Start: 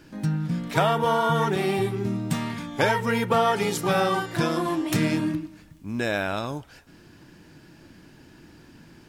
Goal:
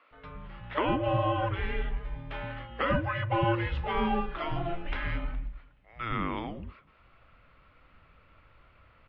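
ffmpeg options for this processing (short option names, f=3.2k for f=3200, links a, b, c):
-filter_complex "[0:a]highpass=f=300:t=q:w=0.5412,highpass=f=300:t=q:w=1.307,lowpass=f=3.4k:t=q:w=0.5176,lowpass=f=3.4k:t=q:w=0.7071,lowpass=f=3.4k:t=q:w=1.932,afreqshift=-350,acrossover=split=320[a][b];[a]adelay=110[c];[c][b]amix=inputs=2:normalize=0,volume=-3.5dB"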